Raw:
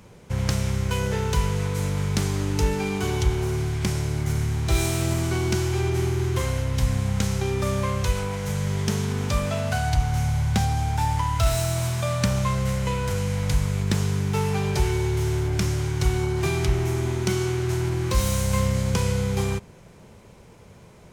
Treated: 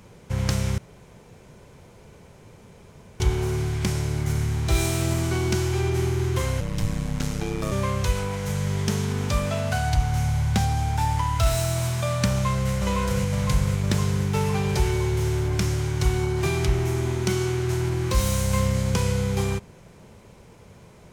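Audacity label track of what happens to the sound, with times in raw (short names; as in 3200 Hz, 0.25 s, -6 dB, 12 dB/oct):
0.780000	3.200000	room tone
6.600000	7.720000	ring modulator 53 Hz
12.300000	12.730000	echo throw 0.51 s, feedback 70%, level -3.5 dB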